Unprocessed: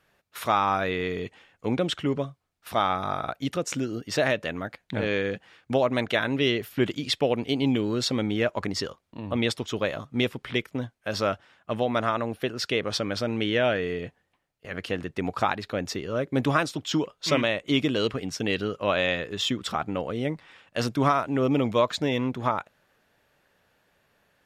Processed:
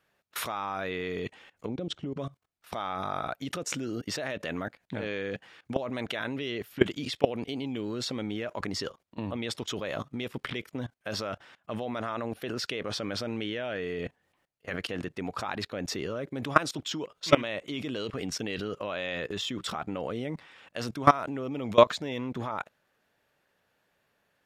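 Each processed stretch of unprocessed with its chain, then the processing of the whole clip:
1.66–2.17 LPF 4700 Hz + bell 1800 Hz -15 dB 2.2 oct + compressor 12:1, threshold -32 dBFS
whole clip: low shelf 80 Hz -7.5 dB; level quantiser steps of 20 dB; gain +6.5 dB

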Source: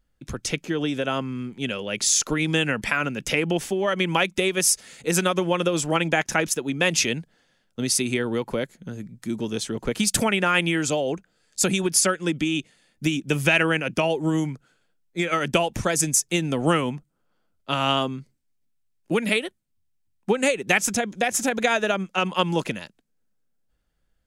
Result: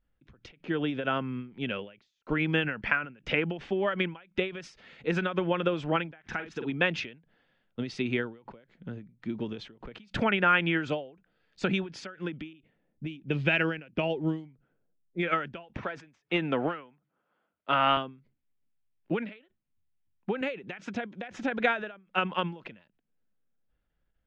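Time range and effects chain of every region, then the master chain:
2.23–3.18 expander -35 dBFS + notch 3700 Hz, Q 8.2
6.22–6.72 notch 570 Hz, Q 5.2 + doubler 46 ms -8 dB
12.53–15.23 low-pass opened by the level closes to 650 Hz, open at -18 dBFS + bell 1200 Hz -7 dB 1.6 oct + careless resampling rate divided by 3×, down none, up zero stuff
15.77–17.97 HPF 110 Hz + high shelf 4100 Hz -4.5 dB + overdrive pedal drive 12 dB, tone 2600 Hz, clips at -8.5 dBFS
20.41–21.31 compressor 4:1, threshold -22 dBFS + HPF 110 Hz
whole clip: dynamic EQ 1500 Hz, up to +6 dB, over -39 dBFS, Q 3.7; LPF 3300 Hz 24 dB/oct; ending taper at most 140 dB/s; gain -4 dB

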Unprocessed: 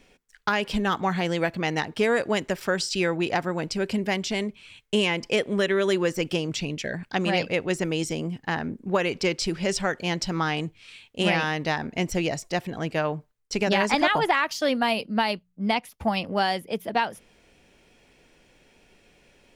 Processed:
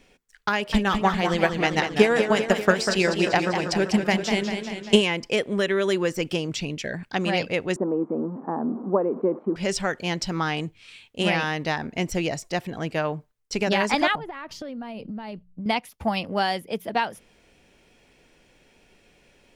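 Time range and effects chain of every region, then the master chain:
0.53–5.02 de-hum 122.8 Hz, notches 11 + transient shaper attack +9 dB, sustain -3 dB + warbling echo 0.196 s, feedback 63%, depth 124 cents, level -7 dB
7.76–9.56 zero-crossing step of -32.5 dBFS + elliptic band-pass 220–1100 Hz, stop band 60 dB + tilt -2 dB/oct
14.15–15.66 tilt -3.5 dB/oct + compressor 16:1, threshold -31 dBFS
whole clip: dry

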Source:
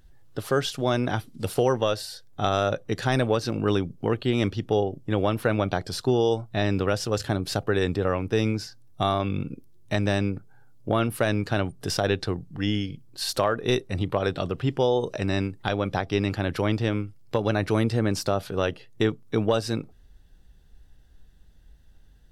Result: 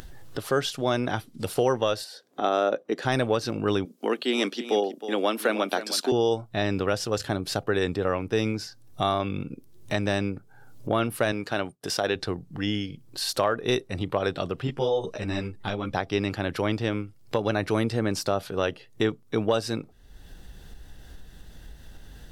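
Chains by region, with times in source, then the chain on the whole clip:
2.04–3.05 HPF 260 Hz 24 dB/oct + tilt -2.5 dB/oct
3.85–6.12 steep high-pass 210 Hz 48 dB/oct + high shelf 2800 Hz +8.5 dB + echo 0.315 s -13 dB
11.32–12.16 expander -37 dBFS + HPF 240 Hz 6 dB/oct
14.67–15.94 low shelf 120 Hz +7 dB + ensemble effect
whole clip: low shelf 150 Hz -7 dB; upward compressor, threshold -29 dBFS

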